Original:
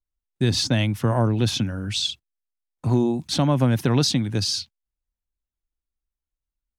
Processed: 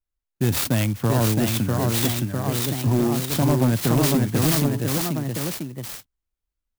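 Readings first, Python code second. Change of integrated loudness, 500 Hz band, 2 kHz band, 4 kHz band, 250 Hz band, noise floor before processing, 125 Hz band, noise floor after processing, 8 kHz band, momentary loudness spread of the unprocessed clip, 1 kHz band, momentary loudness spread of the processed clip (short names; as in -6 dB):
+1.0 dB, +2.0 dB, +3.0 dB, -4.0 dB, +2.0 dB, under -85 dBFS, +2.0 dB, -84 dBFS, +4.5 dB, 7 LU, +2.5 dB, 8 LU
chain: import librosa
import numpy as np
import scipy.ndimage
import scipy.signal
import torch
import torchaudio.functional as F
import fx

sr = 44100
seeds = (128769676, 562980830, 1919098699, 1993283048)

y = fx.echo_pitch(x, sr, ms=707, semitones=1, count=3, db_per_echo=-3.0)
y = np.clip(y, -10.0 ** (-13.5 / 20.0), 10.0 ** (-13.5 / 20.0))
y = fx.clock_jitter(y, sr, seeds[0], jitter_ms=0.061)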